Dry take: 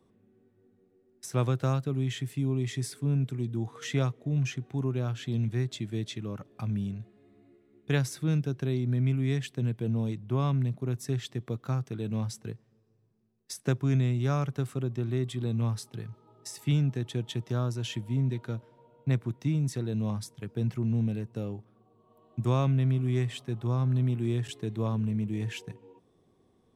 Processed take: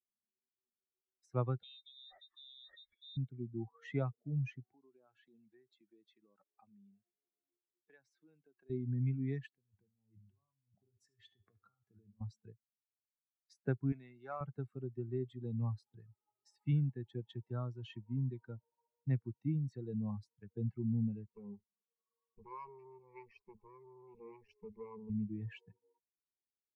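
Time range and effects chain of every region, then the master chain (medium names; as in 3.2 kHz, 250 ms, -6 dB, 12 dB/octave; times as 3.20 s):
1.63–3.17 s: frequency inversion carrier 3.8 kHz + compression 2:1, threshold -44 dBFS
4.73–8.70 s: high-pass 290 Hz + compression 4:1, threshold -43 dBFS
9.57–12.21 s: compressor with a negative ratio -39 dBFS + feedback comb 99 Hz, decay 0.67 s, mix 70% + delay 73 ms -12.5 dB
13.92–14.41 s: one-bit delta coder 64 kbps, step -45.5 dBFS + high-pass 590 Hz 6 dB/octave
21.29–25.10 s: high-pass 46 Hz + valve stage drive 36 dB, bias 0.7 + rippled EQ curve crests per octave 0.83, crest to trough 15 dB
whole clip: expander on every frequency bin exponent 2; low-pass 1.8 kHz 12 dB/octave; bass shelf 91 Hz -5 dB; trim -3 dB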